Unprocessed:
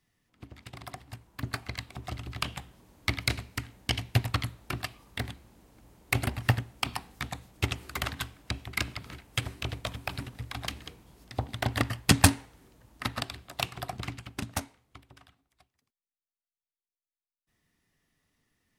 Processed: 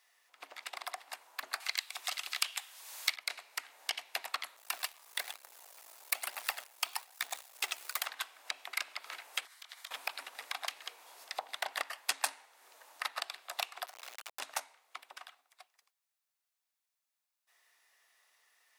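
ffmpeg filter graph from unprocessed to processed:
ffmpeg -i in.wav -filter_complex "[0:a]asettb=1/sr,asplit=3[link_01][link_02][link_03];[link_01]atrim=end=1.604[link_04];[link_02]atrim=start=1.6:end=3.16,asetpts=PTS-STARTPTS,afade=type=in:duration=0.004:curve=qsin,afade=type=out:start_time=1.556:duration=0.004:curve=qsin,tiltshelf=frequency=1400:gain=-10,acontrast=55[link_05];[link_03]atrim=start=3.156[link_06];[link_04][link_05]acrossfade=duration=0.004:curve1=hsin:curve2=qsin[link_07];[link_07][link_06]acrossfade=duration=0.004:curve1=qsin:curve2=hsin,asettb=1/sr,asplit=3[link_08][link_09][link_10];[link_08]atrim=end=4.564[link_11];[link_09]atrim=start=4.56:end=8.06,asetpts=PTS-STARTPTS,afade=type=in:duration=0.004:curve=qsin,afade=type=out:start_time=3.496:duration=0.004:curve=qsin,aemphasis=mode=production:type=cd,aphaser=in_gain=1:out_gain=1:delay=3.2:decay=0.39:speed=1.1:type=triangular,acrusher=bits=8:dc=4:mix=0:aa=0.000001[link_12];[link_10]atrim=start=8.056[link_13];[link_11][link_12]acrossfade=duration=0.004:curve1=hsin:curve2=qsin[link_14];[link_14][link_13]acrossfade=duration=0.004:curve1=qsin:curve2=hsin,asettb=1/sr,asplit=3[link_15][link_16][link_17];[link_15]atrim=end=9.454[link_18];[link_16]atrim=start=9.45:end=9.91,asetpts=PTS-STARTPTS,afade=type=in:duration=0.004:curve=qsin,afade=type=out:start_time=0.456:duration=0.004:curve=qsin,highpass=1500,equalizer=frequency=2600:width=7.4:gain=-14,acompressor=threshold=-50dB:ratio=12:attack=3.2:release=140:knee=1:detection=peak[link_19];[link_17]atrim=start=9.906[link_20];[link_18][link_19]acrossfade=duration=0.004:curve1=hsin:curve2=qsin[link_21];[link_21][link_20]acrossfade=duration=0.004:curve1=qsin:curve2=hsin,asettb=1/sr,asplit=3[link_22][link_23][link_24];[link_22]atrim=end=13.864[link_25];[link_23]atrim=start=13.86:end=14.4,asetpts=PTS-STARTPTS,afade=type=in:duration=0.004:curve=qsin,afade=type=out:start_time=0.536:duration=0.004:curve=qsin,acrusher=bits=4:dc=4:mix=0:aa=0.000001,acompressor=threshold=-45dB:ratio=10:attack=3.2:release=140:knee=1:detection=peak[link_26];[link_24]atrim=start=14.396[link_27];[link_25][link_26]acrossfade=duration=0.004:curve1=hsin:curve2=qsin[link_28];[link_28][link_27]acrossfade=duration=0.004:curve1=qsin:curve2=hsin,highpass=frequency=640:width=0.5412,highpass=frequency=640:width=1.3066,bandreject=frequency=3100:width=26,acompressor=threshold=-48dB:ratio=2.5,volume=8.5dB" out.wav

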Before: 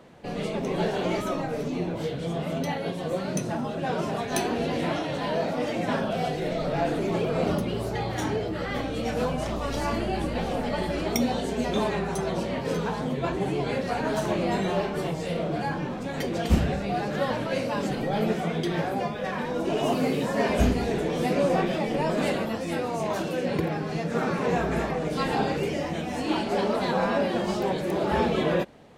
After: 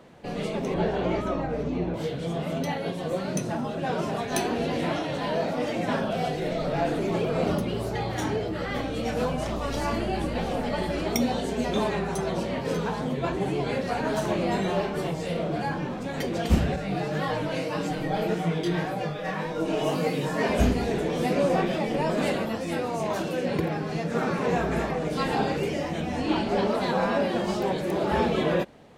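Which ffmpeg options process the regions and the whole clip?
ffmpeg -i in.wav -filter_complex "[0:a]asettb=1/sr,asplit=3[link_01][link_02][link_03];[link_01]atrim=end=0.744[link_04];[link_02]atrim=start=0.74:end=1.94,asetpts=PTS-STARTPTS,afade=type=in:duration=0.004:curve=qsin,afade=type=out:start_time=1.196:duration=0.004:curve=qsin,aemphasis=mode=reproduction:type=75fm,aeval=exprs='val(0)+0.0126*(sin(2*PI*60*n/s)+sin(2*PI*2*60*n/s)/2+sin(2*PI*3*60*n/s)/3+sin(2*PI*4*60*n/s)/4+sin(2*PI*5*60*n/s)/5)':channel_layout=same[link_05];[link_03]atrim=start=1.936[link_06];[link_04][link_05]acrossfade=duration=0.004:curve1=hsin:curve2=qsin[link_07];[link_07][link_06]acrossfade=duration=0.004:curve1=qsin:curve2=hsin,asettb=1/sr,asplit=3[link_08][link_09][link_10];[link_08]atrim=end=16.764[link_11];[link_09]atrim=start=16.76:end=20.43,asetpts=PTS-STARTPTS,afade=type=in:duration=0.004:curve=qsin,afade=type=out:start_time=3.666:duration=0.004:curve=qsin,aecho=1:1:6.4:0.93,atrim=end_sample=161847,flanger=delay=17:depth=5.8:speed=1.8[link_12];[link_10]atrim=start=20.426[link_13];[link_11][link_12]acrossfade=duration=0.004:curve1=hsin:curve2=qsin[link_14];[link_14][link_13]acrossfade=duration=0.004:curve1=qsin:curve2=hsin,asettb=1/sr,asplit=3[link_15][link_16][link_17];[link_15]atrim=end=26.004[link_18];[link_16]atrim=start=26:end=26.68,asetpts=PTS-STARTPTS,afade=type=in:duration=0.004:curve=qsin,afade=type=out:start_time=0.676:duration=0.004:curve=qsin,lowshelf=frequency=130:gain=8.5,acrossover=split=6100[link_19][link_20];[link_20]acompressor=threshold=-58dB:ratio=4:attack=1:release=60[link_21];[link_19][link_21]amix=inputs=2:normalize=0[link_22];[link_17]atrim=start=26.676[link_23];[link_18][link_22]acrossfade=duration=0.004:curve1=hsin:curve2=qsin[link_24];[link_24][link_23]acrossfade=duration=0.004:curve1=qsin:curve2=hsin" out.wav

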